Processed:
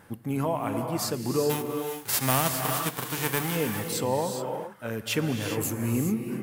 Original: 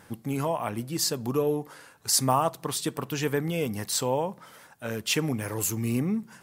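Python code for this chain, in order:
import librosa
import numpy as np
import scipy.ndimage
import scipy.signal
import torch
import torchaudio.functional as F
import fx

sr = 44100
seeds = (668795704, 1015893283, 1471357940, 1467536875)

y = fx.envelope_flatten(x, sr, power=0.3, at=(1.49, 3.55), fade=0.02)
y = fx.peak_eq(y, sr, hz=5800.0, db=-6.5, octaves=1.7)
y = fx.rev_gated(y, sr, seeds[0], gate_ms=440, shape='rising', drr_db=4.0)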